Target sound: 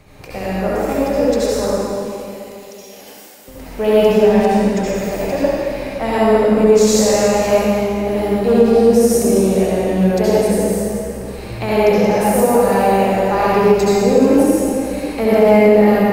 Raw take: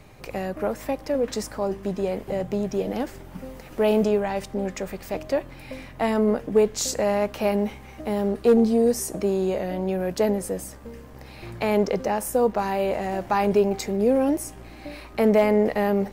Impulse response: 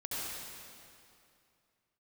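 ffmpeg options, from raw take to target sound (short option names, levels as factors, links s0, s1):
-filter_complex "[0:a]asettb=1/sr,asplit=3[s0][s1][s2];[s0]atrim=end=1.704[s3];[s1]atrim=start=1.7:end=3.48,asetpts=PTS-STARTPTS,afade=t=in:d=0.004:c=qsin,afade=t=out:st=1.776:d=0.004:c=qsin,aderivative[s4];[s2]atrim=start=3.476[s5];[s3][s4]acrossfade=d=0.004:c1=hsin:c2=qsin[s6];[s6][s5]acrossfade=d=0.004:c1=qsin:c2=hsin[s7];[1:a]atrim=start_sample=2205[s8];[s7][s8]afir=irnorm=-1:irlink=0,alimiter=level_in=2.37:limit=0.891:release=50:level=0:latency=1,volume=0.891"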